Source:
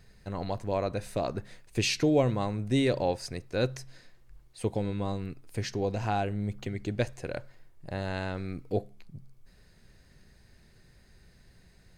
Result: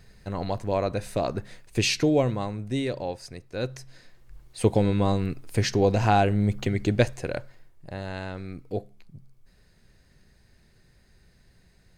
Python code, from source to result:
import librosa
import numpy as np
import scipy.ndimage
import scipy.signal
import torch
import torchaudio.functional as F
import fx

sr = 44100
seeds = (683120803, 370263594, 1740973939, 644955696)

y = fx.gain(x, sr, db=fx.line((1.9, 4.0), (2.96, -3.5), (3.49, -3.5), (4.63, 9.0), (6.9, 9.0), (7.95, -1.0)))